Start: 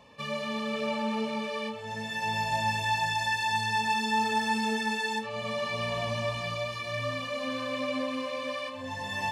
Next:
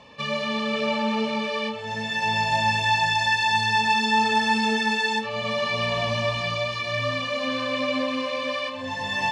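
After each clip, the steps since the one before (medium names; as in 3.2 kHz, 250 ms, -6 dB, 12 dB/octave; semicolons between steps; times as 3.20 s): low-pass 4.5 kHz 12 dB/octave; treble shelf 3.5 kHz +8.5 dB; hum notches 50/100 Hz; trim +5.5 dB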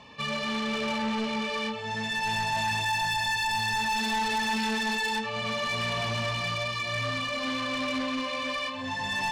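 peaking EQ 540 Hz -7.5 dB 0.36 oct; saturation -25 dBFS, distortion -9 dB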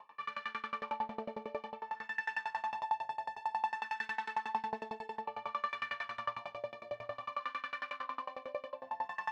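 wah-wah 0.55 Hz 600–1500 Hz, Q 3.2; reverberation, pre-delay 3 ms, DRR 4 dB; sawtooth tremolo in dB decaying 11 Hz, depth 25 dB; trim +4.5 dB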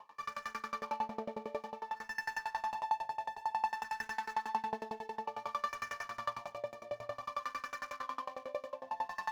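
median filter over 15 samples; trim +1 dB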